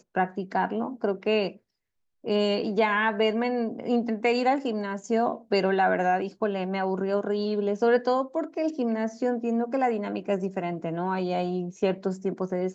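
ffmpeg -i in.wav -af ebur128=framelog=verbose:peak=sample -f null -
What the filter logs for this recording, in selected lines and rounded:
Integrated loudness:
  I:         -26.7 LUFS
  Threshold: -36.8 LUFS
Loudness range:
  LRA:         2.8 LU
  Threshold: -46.5 LUFS
  LRA low:   -28.2 LUFS
  LRA high:  -25.5 LUFS
Sample peak:
  Peak:      -11.2 dBFS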